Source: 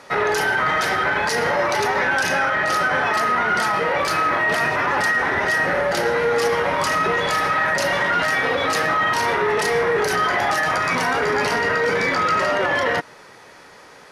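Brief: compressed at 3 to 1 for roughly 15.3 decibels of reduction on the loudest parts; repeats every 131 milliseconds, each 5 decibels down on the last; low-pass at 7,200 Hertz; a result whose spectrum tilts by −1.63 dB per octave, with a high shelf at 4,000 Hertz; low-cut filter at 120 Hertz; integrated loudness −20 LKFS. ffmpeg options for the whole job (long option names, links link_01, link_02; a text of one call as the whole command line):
ffmpeg -i in.wav -af "highpass=120,lowpass=7200,highshelf=frequency=4000:gain=-7.5,acompressor=threshold=-39dB:ratio=3,aecho=1:1:131|262|393|524|655|786|917:0.562|0.315|0.176|0.0988|0.0553|0.031|0.0173,volume=13.5dB" out.wav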